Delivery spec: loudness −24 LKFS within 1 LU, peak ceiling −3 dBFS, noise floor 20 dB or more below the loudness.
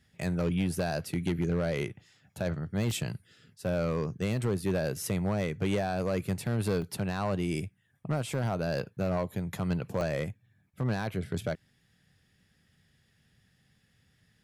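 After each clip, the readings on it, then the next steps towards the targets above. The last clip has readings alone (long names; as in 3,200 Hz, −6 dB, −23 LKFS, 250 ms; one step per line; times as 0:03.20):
share of clipped samples 1.2%; peaks flattened at −22.5 dBFS; number of dropouts 3; longest dropout 2.4 ms; integrated loudness −32.0 LKFS; sample peak −22.5 dBFS; target loudness −24.0 LKFS
→ clipped peaks rebuilt −22.5 dBFS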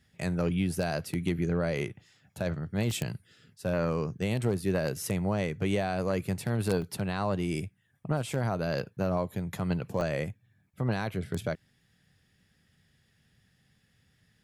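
share of clipped samples 0.0%; number of dropouts 3; longest dropout 2.4 ms
→ repair the gap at 0:02.91/0:06.82/0:10.01, 2.4 ms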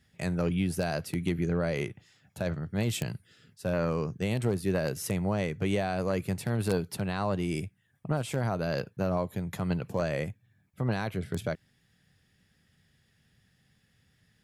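number of dropouts 0; integrated loudness −31.5 LKFS; sample peak −13.5 dBFS; target loudness −24.0 LKFS
→ level +7.5 dB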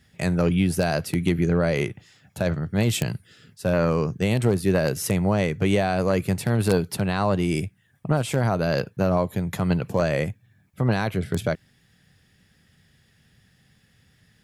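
integrated loudness −24.0 LKFS; sample peak −6.0 dBFS; background noise floor −62 dBFS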